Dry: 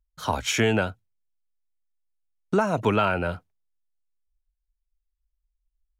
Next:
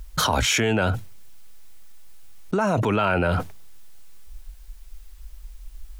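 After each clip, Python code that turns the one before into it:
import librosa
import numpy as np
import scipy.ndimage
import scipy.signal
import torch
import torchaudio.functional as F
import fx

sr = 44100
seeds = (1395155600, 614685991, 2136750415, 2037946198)

y = fx.env_flatten(x, sr, amount_pct=100)
y = y * 10.0 ** (-3.0 / 20.0)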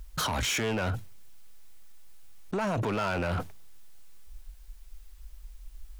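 y = np.clip(10.0 ** (20.0 / 20.0) * x, -1.0, 1.0) / 10.0 ** (20.0 / 20.0)
y = y * 10.0 ** (-5.5 / 20.0)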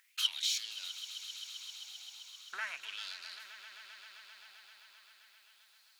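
y = fx.filter_lfo_highpass(x, sr, shape='sine', hz=0.38, low_hz=790.0, high_hz=4300.0, q=6.0)
y = fx.echo_swell(y, sr, ms=131, loudest=5, wet_db=-16.0)
y = y * 10.0 ** (-8.0 / 20.0)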